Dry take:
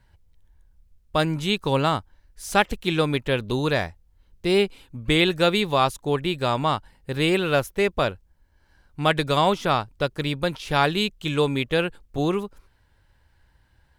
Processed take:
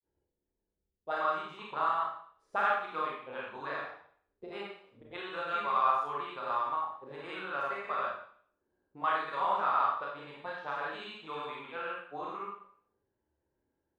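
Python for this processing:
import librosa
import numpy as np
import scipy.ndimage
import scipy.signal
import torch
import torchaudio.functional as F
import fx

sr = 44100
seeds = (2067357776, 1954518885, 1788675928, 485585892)

y = fx.granulator(x, sr, seeds[0], grain_ms=144.0, per_s=20.0, spray_ms=100.0, spread_st=0)
y = fx.auto_wah(y, sr, base_hz=360.0, top_hz=1200.0, q=3.3, full_db=-23.5, direction='up')
y = fx.rev_schroeder(y, sr, rt60_s=0.56, comb_ms=28, drr_db=-3.0)
y = y * 10.0 ** (-3.5 / 20.0)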